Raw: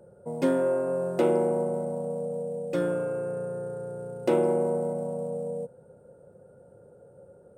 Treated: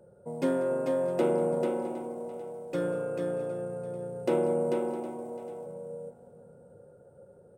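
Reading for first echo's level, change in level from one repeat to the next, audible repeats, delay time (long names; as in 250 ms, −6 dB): −18.5 dB, repeats not evenly spaced, 6, 190 ms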